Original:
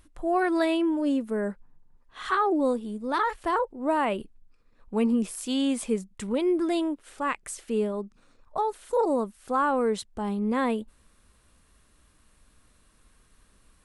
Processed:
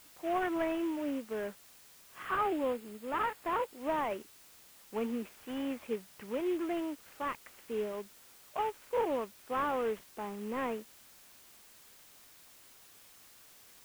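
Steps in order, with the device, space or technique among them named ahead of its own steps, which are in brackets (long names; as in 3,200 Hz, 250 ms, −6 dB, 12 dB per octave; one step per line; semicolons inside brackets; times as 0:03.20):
army field radio (band-pass filter 320–3,200 Hz; variable-slope delta modulation 16 kbit/s; white noise bed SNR 21 dB)
0:02.25–0:03.78: notch filter 5,900 Hz, Q 8.9
level −6 dB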